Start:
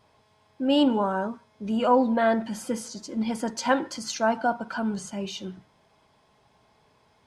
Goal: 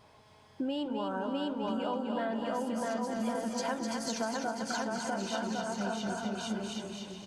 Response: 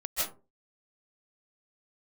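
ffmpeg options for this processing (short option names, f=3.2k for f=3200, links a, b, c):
-filter_complex "[0:a]asplit=2[a][b];[b]aecho=0:1:650|1105|1424|1646|1803:0.631|0.398|0.251|0.158|0.1[c];[a][c]amix=inputs=2:normalize=0,acompressor=threshold=-35dB:ratio=10,asplit=2[d][e];[e]aecho=0:1:254|508|762|1016|1270:0.531|0.202|0.0767|0.0291|0.0111[f];[d][f]amix=inputs=2:normalize=0,volume=3dB"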